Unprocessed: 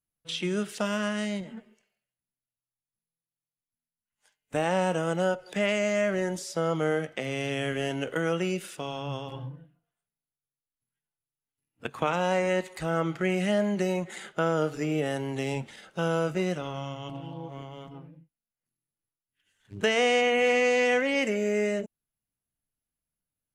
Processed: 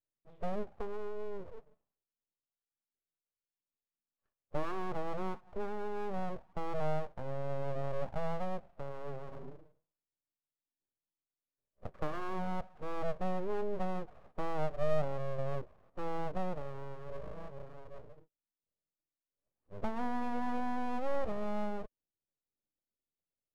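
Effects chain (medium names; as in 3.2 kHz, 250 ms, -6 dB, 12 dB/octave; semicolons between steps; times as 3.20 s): cascade formant filter u; full-wave rectifier; trim +5.5 dB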